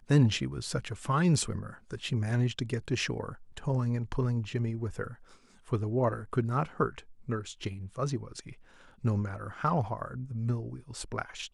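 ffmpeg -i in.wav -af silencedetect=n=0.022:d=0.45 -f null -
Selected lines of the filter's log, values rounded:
silence_start: 5.07
silence_end: 5.72 | silence_duration: 0.65
silence_start: 8.49
silence_end: 9.05 | silence_duration: 0.56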